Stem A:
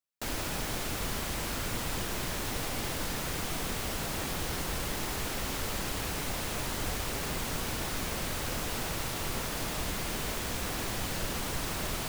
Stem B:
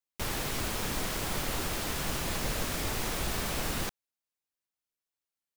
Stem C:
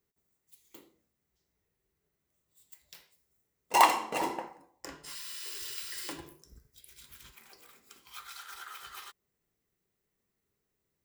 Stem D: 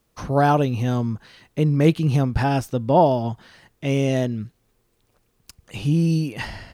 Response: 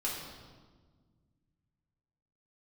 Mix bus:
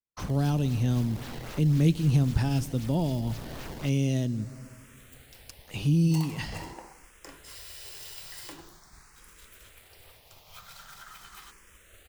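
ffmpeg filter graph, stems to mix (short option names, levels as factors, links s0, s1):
-filter_complex "[0:a]equalizer=f=260:w=1.5:g=-14,aeval=exprs='sgn(val(0))*max(abs(val(0))-0.00398,0)':c=same,asplit=2[s0][s1];[s1]afreqshift=0.44[s2];[s0][s2]amix=inputs=2:normalize=1,adelay=700,volume=0.188[s3];[1:a]acrusher=samples=21:mix=1:aa=0.000001:lfo=1:lforange=33.6:lforate=3.8,volume=0.422[s4];[2:a]acompressor=threshold=0.02:ratio=3,adelay=2400,volume=0.708[s5];[3:a]volume=0.708,asplit=2[s6][s7];[s7]volume=0.0841[s8];[4:a]atrim=start_sample=2205[s9];[s8][s9]afir=irnorm=-1:irlink=0[s10];[s3][s4][s5][s6][s10]amix=inputs=5:normalize=0,agate=range=0.0224:threshold=0.00282:ratio=3:detection=peak,acrossover=split=280|3000[s11][s12][s13];[s12]acompressor=threshold=0.01:ratio=4[s14];[s11][s14][s13]amix=inputs=3:normalize=0"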